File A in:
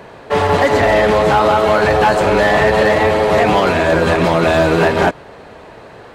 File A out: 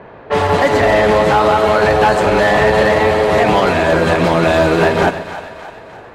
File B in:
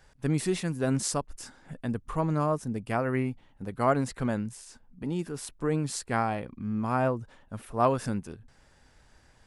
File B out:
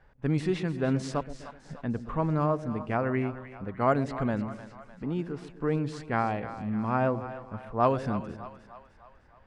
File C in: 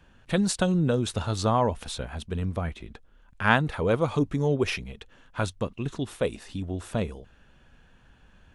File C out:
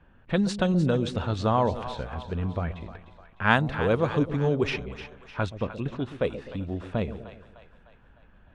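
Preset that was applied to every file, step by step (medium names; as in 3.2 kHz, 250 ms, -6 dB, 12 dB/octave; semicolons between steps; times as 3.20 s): level-controlled noise filter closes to 1.9 kHz, open at -13 dBFS; two-band feedback delay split 620 Hz, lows 126 ms, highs 303 ms, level -12 dB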